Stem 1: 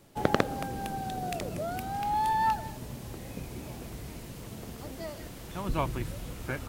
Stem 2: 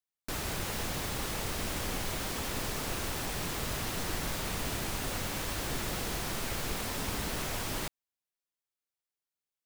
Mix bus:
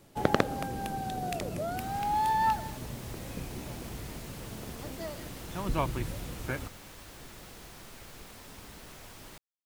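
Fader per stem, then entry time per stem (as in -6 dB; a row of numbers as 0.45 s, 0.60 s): 0.0 dB, -13.5 dB; 0.00 s, 1.50 s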